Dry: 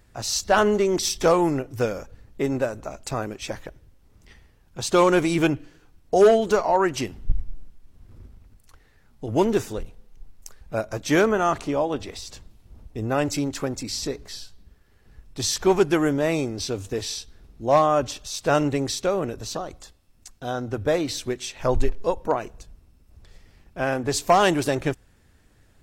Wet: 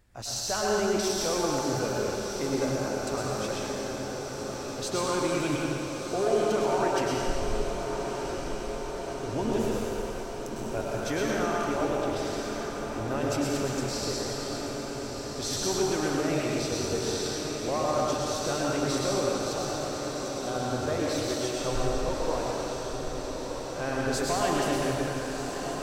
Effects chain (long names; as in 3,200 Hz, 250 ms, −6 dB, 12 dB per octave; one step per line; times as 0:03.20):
brickwall limiter −15.5 dBFS, peak gain reduction 6.5 dB
feedback delay with all-pass diffusion 1,231 ms, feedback 75%, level −7.5 dB
convolution reverb RT60 3.0 s, pre-delay 100 ms, DRR −4 dB
level −7.5 dB